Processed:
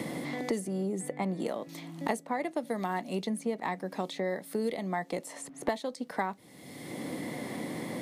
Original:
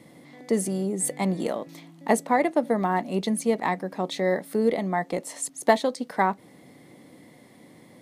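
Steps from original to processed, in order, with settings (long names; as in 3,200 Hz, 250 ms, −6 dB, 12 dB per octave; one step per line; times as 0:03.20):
multiband upward and downward compressor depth 100%
level −8.5 dB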